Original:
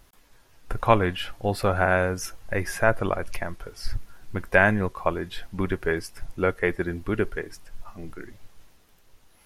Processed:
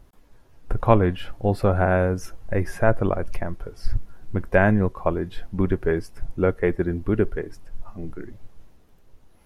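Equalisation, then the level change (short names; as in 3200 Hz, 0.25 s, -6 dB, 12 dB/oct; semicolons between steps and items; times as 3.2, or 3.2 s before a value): tilt shelf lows +7 dB; -1.0 dB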